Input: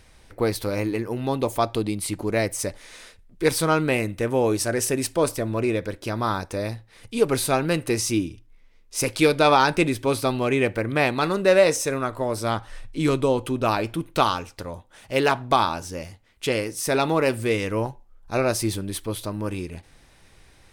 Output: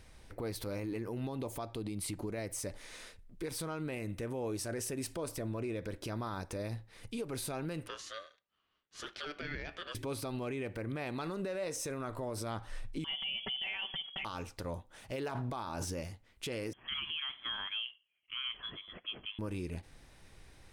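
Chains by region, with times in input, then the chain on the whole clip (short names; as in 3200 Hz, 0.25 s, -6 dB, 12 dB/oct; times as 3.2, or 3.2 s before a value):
7.87–9.95 BPF 770–3000 Hz + ring modulator 880 Hz
13.04–14.25 inverted band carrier 3300 Hz + compressor 4:1, threshold -29 dBFS + comb 5.2 ms, depth 92%
15.19–16.01 dynamic EQ 2900 Hz, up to -4 dB, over -35 dBFS, Q 1.1 + sustainer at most 35 dB/s
16.73–19.39 HPF 460 Hz 24 dB/oct + air absorption 260 m + inverted band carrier 3700 Hz
whole clip: low shelf 480 Hz +3 dB; compressor, threshold -24 dBFS; limiter -23.5 dBFS; gain -6 dB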